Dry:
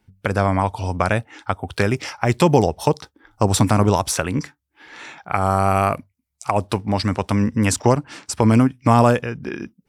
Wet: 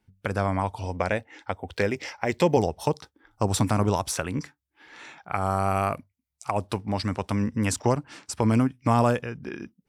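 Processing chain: 0.85–2.57 s: graphic EQ with 31 bands 125 Hz -11 dB, 500 Hz +6 dB, 1.25 kHz -6 dB, 2 kHz +5 dB, 10 kHz -11 dB; trim -7 dB

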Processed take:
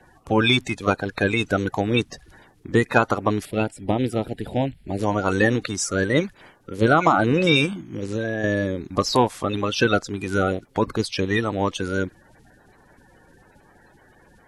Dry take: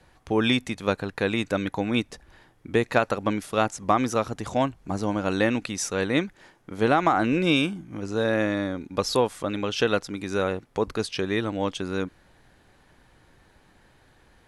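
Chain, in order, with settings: coarse spectral quantiser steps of 30 dB; 3.45–4.99 s: static phaser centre 2.7 kHz, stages 4; 7.65–8.44 s: compression 6:1, threshold -27 dBFS, peak gain reduction 7.5 dB; trim +4.5 dB

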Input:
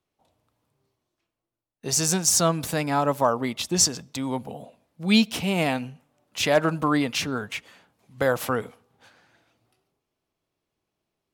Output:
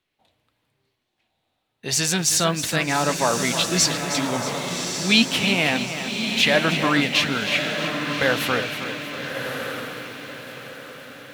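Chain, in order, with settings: high-order bell 2.6 kHz +9 dB; in parallel at -2 dB: peak limiter -11.5 dBFS, peak gain reduction 10.5 dB; on the sum: flange 1.9 Hz, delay 2.9 ms, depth 7.4 ms, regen +73%; on a send: echo that smears into a reverb 1194 ms, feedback 41%, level -6 dB; on the sum: bit-crushed delay 317 ms, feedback 55%, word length 7-bit, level -10 dB

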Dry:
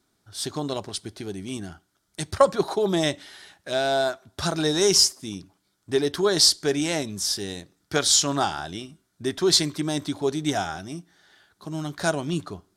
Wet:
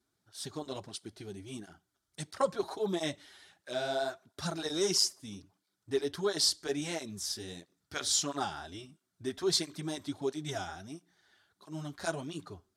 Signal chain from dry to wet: cancelling through-zero flanger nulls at 1.5 Hz, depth 7.2 ms; trim -7.5 dB

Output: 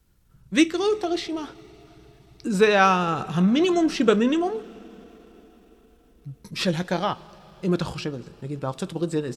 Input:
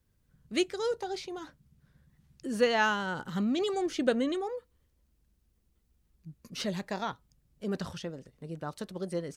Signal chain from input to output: two-slope reverb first 0.23 s, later 4.7 s, from -20 dB, DRR 11 dB; pitch shift -2 st; trim +9 dB

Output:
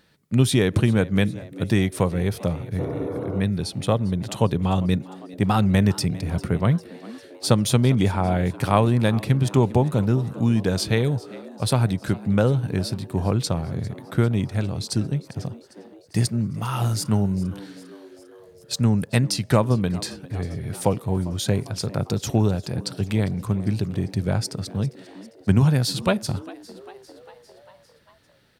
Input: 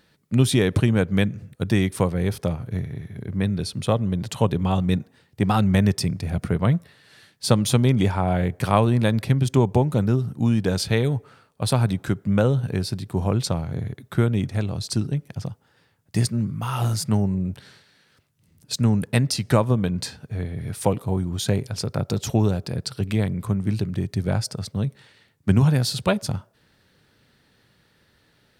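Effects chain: frequency-shifting echo 400 ms, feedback 62%, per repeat +89 Hz, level -20 dB; spectral replace 2.82–3.39 s, 220–1500 Hz after

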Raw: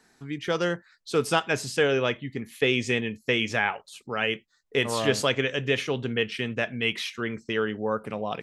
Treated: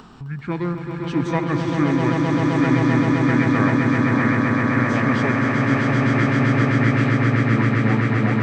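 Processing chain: tone controls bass +8 dB, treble -10 dB; upward compressor, threshold -30 dBFS; formant shift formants -6 st; echo with a slow build-up 130 ms, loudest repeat 8, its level -4.5 dB

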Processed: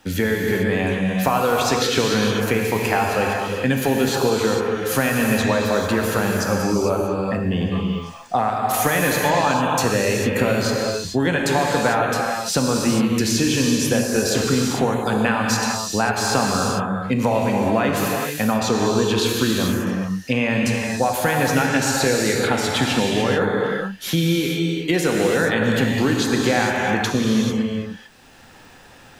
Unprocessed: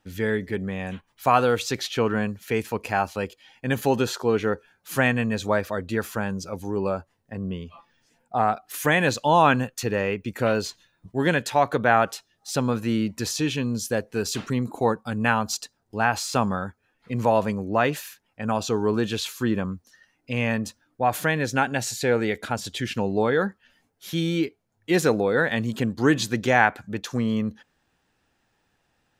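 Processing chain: compression, threshold -27 dBFS, peak gain reduction 14 dB; gated-style reverb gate 470 ms flat, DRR -1 dB; three bands compressed up and down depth 40%; trim +9 dB

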